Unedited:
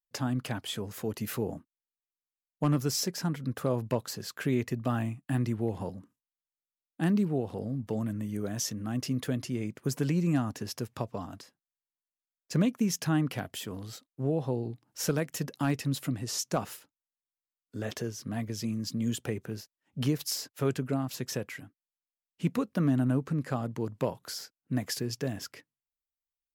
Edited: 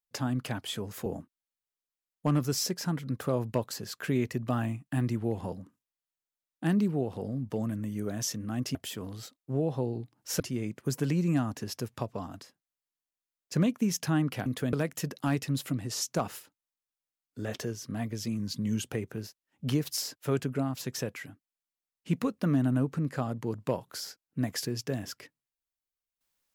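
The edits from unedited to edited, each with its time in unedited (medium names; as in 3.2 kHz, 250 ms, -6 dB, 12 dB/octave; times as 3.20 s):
1.06–1.43 s: delete
9.12–9.39 s: swap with 13.45–15.10 s
18.76–19.19 s: speed 93%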